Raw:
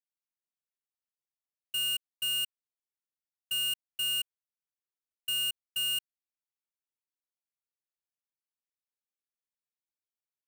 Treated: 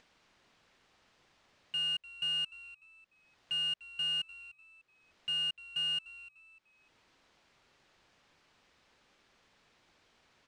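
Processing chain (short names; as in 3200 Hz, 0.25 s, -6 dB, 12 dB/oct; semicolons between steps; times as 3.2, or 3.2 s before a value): high shelf 7500 Hz -9.5 dB; upward compressor, threshold -40 dBFS; air absorption 130 m; on a send: frequency-shifting echo 0.298 s, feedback 33%, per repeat -97 Hz, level -17.5 dB; on the sum: gain +1.5 dB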